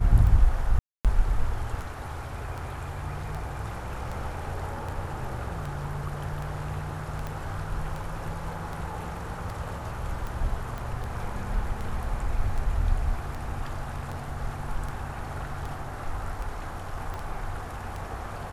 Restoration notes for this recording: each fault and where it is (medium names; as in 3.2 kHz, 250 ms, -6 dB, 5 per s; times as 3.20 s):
tick 78 rpm
0.79–1.05 s: dropout 257 ms
7.27 s: pop -21 dBFS
10.78 s: pop
17.14 s: pop -23 dBFS